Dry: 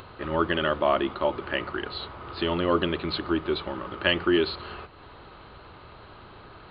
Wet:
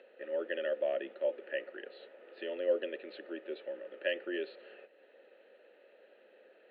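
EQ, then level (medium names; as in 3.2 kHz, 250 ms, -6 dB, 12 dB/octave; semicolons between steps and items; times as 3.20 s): vowel filter e; elliptic high-pass 210 Hz, stop band 40 dB; distance through air 87 m; 0.0 dB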